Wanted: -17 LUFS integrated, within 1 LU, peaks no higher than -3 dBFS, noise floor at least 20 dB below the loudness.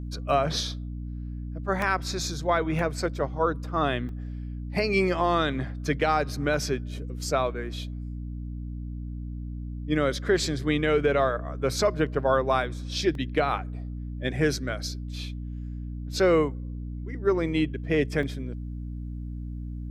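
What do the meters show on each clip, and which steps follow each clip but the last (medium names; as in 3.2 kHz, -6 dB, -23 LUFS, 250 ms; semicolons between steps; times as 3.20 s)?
dropouts 6; longest dropout 2.0 ms; hum 60 Hz; highest harmonic 300 Hz; hum level -32 dBFS; loudness -28.0 LUFS; peak level -11.5 dBFS; loudness target -17.0 LUFS
-> interpolate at 1.82/2.79/4.09/6.54/13.15/18.23 s, 2 ms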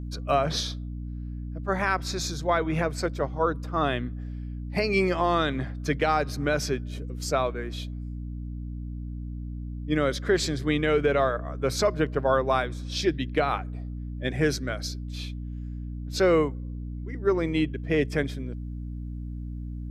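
dropouts 0; hum 60 Hz; highest harmonic 300 Hz; hum level -32 dBFS
-> hum notches 60/120/180/240/300 Hz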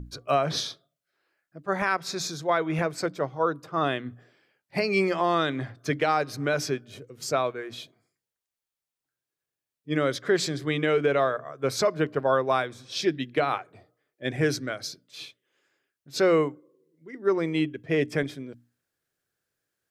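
hum not found; loudness -27.0 LUFS; peak level -12.0 dBFS; loudness target -17.0 LUFS
-> trim +10 dB; peak limiter -3 dBFS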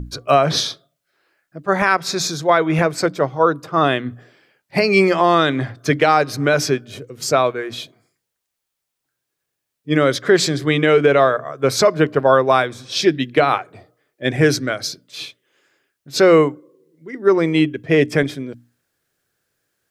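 loudness -17.0 LUFS; peak level -3.0 dBFS; noise floor -79 dBFS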